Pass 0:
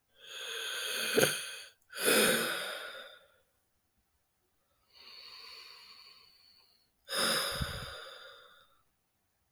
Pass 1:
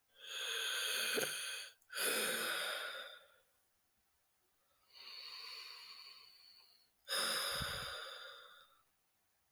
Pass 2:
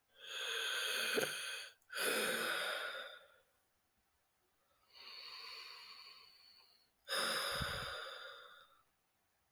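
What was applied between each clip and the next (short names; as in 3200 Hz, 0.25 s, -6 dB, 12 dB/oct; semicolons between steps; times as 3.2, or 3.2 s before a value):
low shelf 390 Hz -10 dB; compressor 6:1, threshold -35 dBFS, peak gain reduction 12 dB
high shelf 3500 Hz -6.5 dB; gain +2.5 dB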